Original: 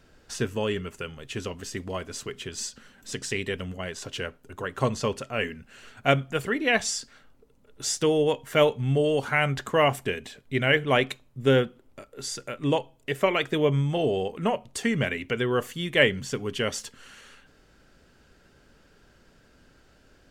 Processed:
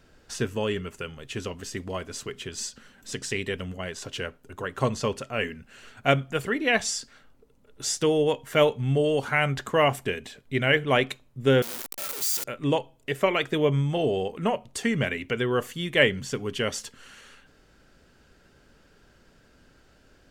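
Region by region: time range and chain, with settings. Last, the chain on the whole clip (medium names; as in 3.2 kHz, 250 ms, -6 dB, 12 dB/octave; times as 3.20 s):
11.62–12.44 s: one-bit comparator + RIAA curve recording
whole clip: none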